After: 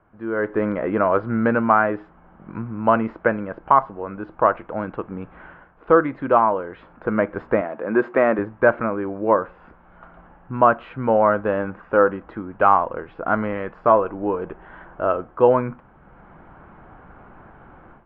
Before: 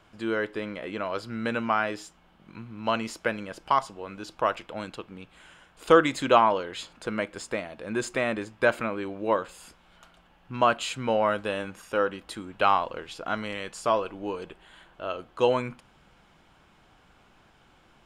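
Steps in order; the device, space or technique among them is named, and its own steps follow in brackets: 7.61–8.39 s: high-pass 250 Hz 12 dB/octave; action camera in a waterproof case (low-pass 1.6 kHz 24 dB/octave; level rider gain up to 15.5 dB; trim -1 dB; AAC 96 kbps 32 kHz)

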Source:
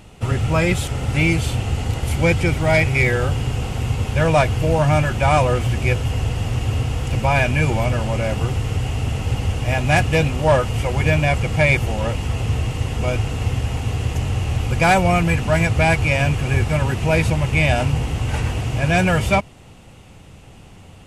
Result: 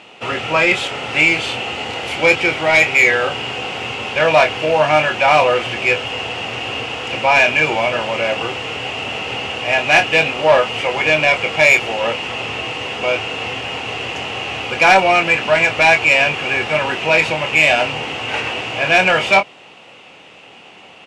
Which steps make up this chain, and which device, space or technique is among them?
intercom (band-pass 430–4500 Hz; peaking EQ 2.7 kHz +6.5 dB 0.56 oct; saturation -11 dBFS, distortion -16 dB; doubling 26 ms -7.5 dB); trim +6.5 dB

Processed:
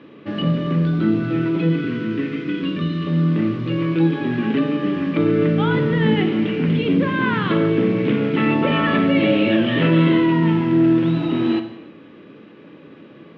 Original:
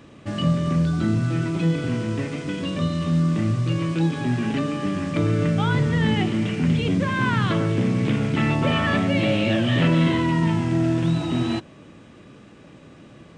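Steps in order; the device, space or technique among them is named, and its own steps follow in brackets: kitchen radio (cabinet simulation 180–3600 Hz, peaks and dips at 290 Hz +5 dB, 430 Hz +6 dB, 720 Hz -5 dB); 1.69–3.07 s: high-order bell 680 Hz -10 dB 1.2 oct; gated-style reverb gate 340 ms falling, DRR 7.5 dB; trim +2 dB

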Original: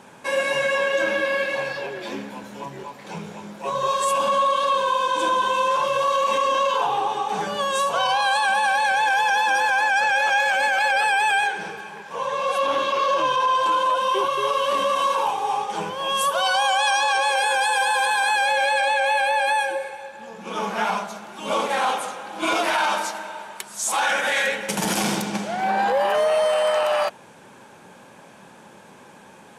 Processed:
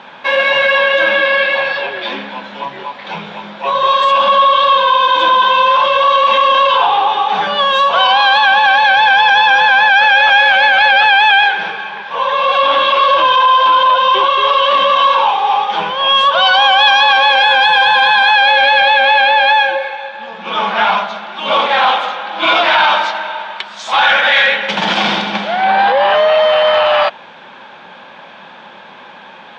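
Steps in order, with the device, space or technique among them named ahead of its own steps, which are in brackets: overdrive pedal into a guitar cabinet (overdrive pedal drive 10 dB, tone 5.9 kHz, clips at -9.5 dBFS; cabinet simulation 94–4000 Hz, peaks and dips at 130 Hz -7 dB, 300 Hz -5 dB, 430 Hz -6 dB, 3.5 kHz +6 dB); trim +8 dB

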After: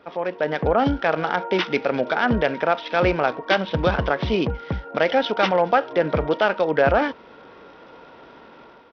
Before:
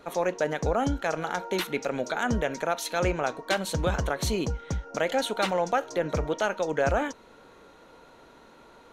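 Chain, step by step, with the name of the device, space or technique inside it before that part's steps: Bluetooth headset (high-pass 110 Hz 6 dB/octave; level rider gain up to 8 dB; resampled via 8 kHz; SBC 64 kbps 44.1 kHz)

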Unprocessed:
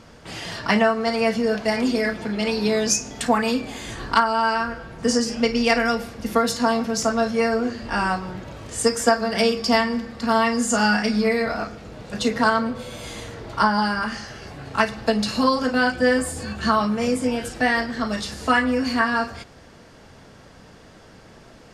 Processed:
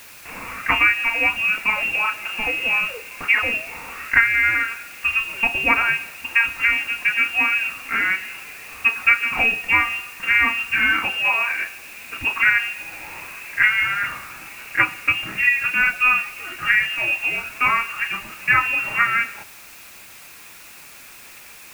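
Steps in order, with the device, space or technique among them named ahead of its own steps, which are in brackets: scrambled radio voice (band-pass 350–3000 Hz; frequency inversion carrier 3 kHz; white noise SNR 22 dB); trim +3 dB

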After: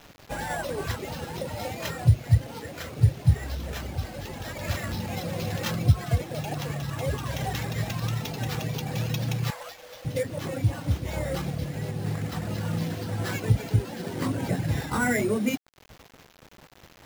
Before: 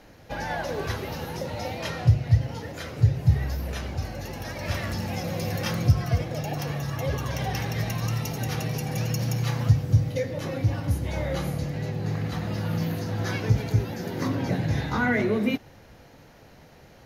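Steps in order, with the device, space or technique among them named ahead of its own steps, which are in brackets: 9.50–10.05 s: elliptic high-pass 510 Hz, stop band 40 dB; reverb removal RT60 0.58 s; early 8-bit sampler (sample-rate reducer 9.2 kHz, jitter 0%; bit crusher 8-bit)

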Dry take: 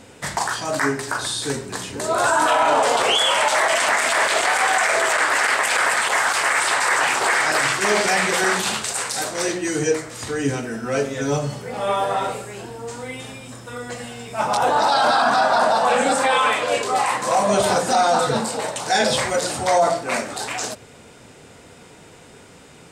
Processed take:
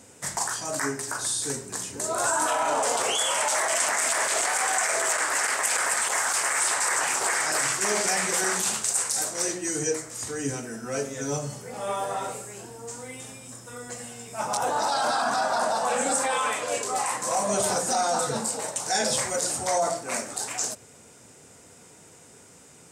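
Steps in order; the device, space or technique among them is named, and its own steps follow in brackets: budget condenser microphone (high-pass 62 Hz; resonant high shelf 5 kHz +8 dB, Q 1.5); trim -8 dB

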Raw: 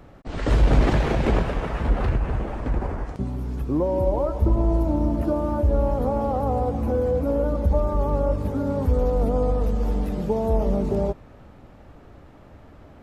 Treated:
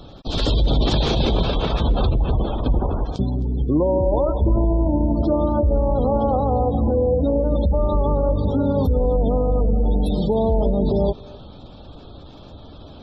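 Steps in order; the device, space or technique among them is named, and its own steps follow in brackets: over-bright horn tweeter (resonant high shelf 2.6 kHz +9 dB, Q 3; peak limiter -17 dBFS, peak gain reduction 10 dB); band-stop 2.9 kHz, Q 8.7; spectral gate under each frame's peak -30 dB strong; 7.15–7.75 s: resonant high shelf 2 kHz +11 dB, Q 3; thinning echo 263 ms, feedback 25%, level -20.5 dB; trim +6.5 dB

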